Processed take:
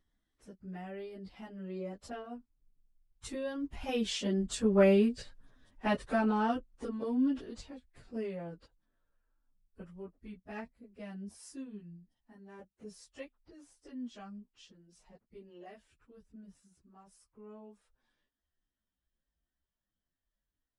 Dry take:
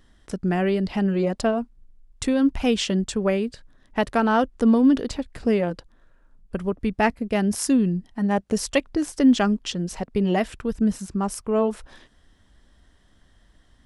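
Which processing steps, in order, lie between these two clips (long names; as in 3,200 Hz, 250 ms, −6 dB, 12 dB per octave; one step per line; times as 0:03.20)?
source passing by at 0:03.43, 8 m/s, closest 2.6 metres
time stretch by phase vocoder 1.5×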